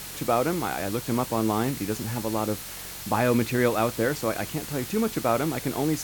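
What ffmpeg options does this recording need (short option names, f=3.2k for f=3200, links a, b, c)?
-af "bandreject=f=46.3:t=h:w=4,bandreject=f=92.6:t=h:w=4,bandreject=f=138.9:t=h:w=4,bandreject=f=185.2:t=h:w=4,bandreject=f=4.2k:w=30,afwtdn=0.013"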